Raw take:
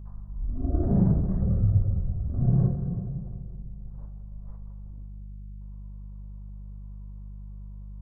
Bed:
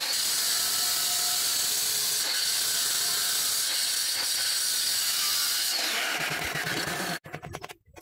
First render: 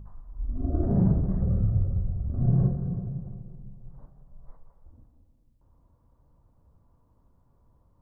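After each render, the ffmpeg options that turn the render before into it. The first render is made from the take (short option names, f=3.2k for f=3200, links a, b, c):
-af "bandreject=f=50:t=h:w=4,bandreject=f=100:t=h:w=4,bandreject=f=150:t=h:w=4,bandreject=f=200:t=h:w=4"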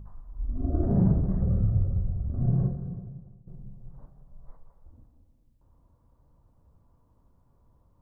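-filter_complex "[0:a]asplit=2[a][b];[a]atrim=end=3.47,asetpts=PTS-STARTPTS,afade=t=out:st=2.18:d=1.29:silence=0.158489[c];[b]atrim=start=3.47,asetpts=PTS-STARTPTS,afade=t=in:d=0.004:c=hsin:silence=0.158489[d];[c][d]concat=n=2:v=0:a=1"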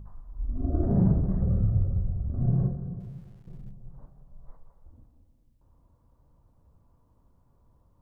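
-filter_complex "[0:a]asettb=1/sr,asplit=3[a][b][c];[a]atrim=end=3.004[d];[b]atrim=start=3:end=3.71,asetpts=PTS-STARTPTS,afade=t=in:d=0.004:c=qsin,afade=t=out:st=0.706:d=0.004:c=qsin,aeval=exprs='val(0)+0.5*0.0015*sgn(val(0))':c=same[e];[c]atrim=start=3.706[f];[d][e]acrossfade=d=0.004:c1=hsin:c2=qsin[g];[g][f]acrossfade=d=0.004:c1=qsin:c2=hsin"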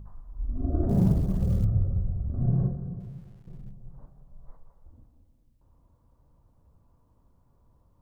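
-filter_complex "[0:a]asettb=1/sr,asplit=3[a][b][c];[a]atrim=end=0.894[d];[b]atrim=start=0.89:end=1.65,asetpts=PTS-STARTPTS,afade=t=in:d=0.004:c=qsin,afade=t=out:st=0.756:d=0.004:c=qsin,acrusher=bits=9:mode=log:mix=0:aa=0.000001[e];[c]atrim=start=1.646[f];[d][e]acrossfade=d=0.004:c1=hsin:c2=qsin[g];[g][f]acrossfade=d=0.004:c1=qsin:c2=hsin"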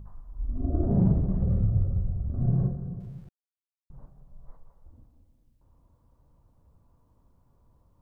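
-filter_complex "[0:a]asettb=1/sr,asplit=3[a][b][c];[a]atrim=end=0.594[d];[b]atrim=start=0.59:end=1.77,asetpts=PTS-STARTPTS,afade=t=in:d=0.004:c=qsin,afade=t=out:st=1.176:d=0.004:c=qsin,lowpass=1.3k[e];[c]atrim=start=1.766[f];[d][e]acrossfade=d=0.004:c1=hsin:c2=qsin[g];[g][f]acrossfade=d=0.004:c1=qsin:c2=hsin,asplit=3[h][i][j];[h]atrim=end=3.29,asetpts=PTS-STARTPTS,afade=t=out:st=3.286:d=0.004:c=hsin[k];[i]atrim=start=3.29:end=3.9,asetpts=PTS-STARTPTS,volume=0[l];[j]atrim=start=3.9,asetpts=PTS-STARTPTS,afade=t=in:d=0.004:c=hsin[m];[k][l][m]concat=n=3:v=0:a=1"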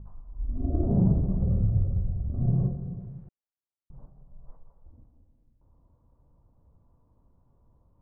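-af "lowpass=1.1k"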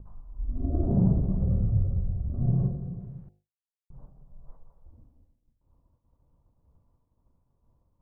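-af "bandreject=f=51.15:t=h:w=4,bandreject=f=102.3:t=h:w=4,bandreject=f=153.45:t=h:w=4,bandreject=f=204.6:t=h:w=4,bandreject=f=255.75:t=h:w=4,bandreject=f=306.9:t=h:w=4,bandreject=f=358.05:t=h:w=4,bandreject=f=409.2:t=h:w=4,bandreject=f=460.35:t=h:w=4,bandreject=f=511.5:t=h:w=4,bandreject=f=562.65:t=h:w=4,bandreject=f=613.8:t=h:w=4,bandreject=f=664.95:t=h:w=4,bandreject=f=716.1:t=h:w=4,bandreject=f=767.25:t=h:w=4,bandreject=f=818.4:t=h:w=4,bandreject=f=869.55:t=h:w=4,agate=range=-33dB:threshold=-56dB:ratio=3:detection=peak"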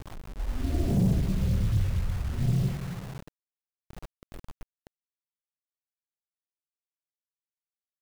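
-af "acrusher=bits=6:mix=0:aa=0.000001,asoftclip=type=tanh:threshold=-14.5dB"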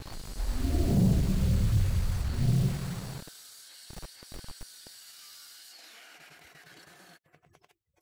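-filter_complex "[1:a]volume=-23.5dB[a];[0:a][a]amix=inputs=2:normalize=0"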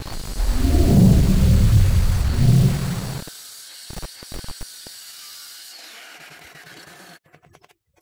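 -af "volume=11dB"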